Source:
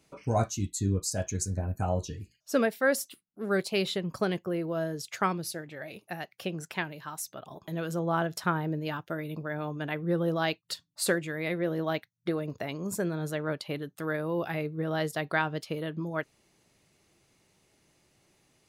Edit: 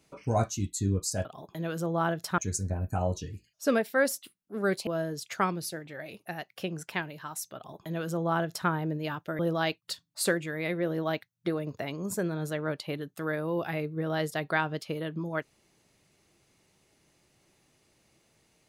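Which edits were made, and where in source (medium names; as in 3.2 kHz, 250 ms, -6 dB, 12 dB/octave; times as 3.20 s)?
3.74–4.69 s: delete
7.38–8.51 s: copy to 1.25 s
9.21–10.20 s: delete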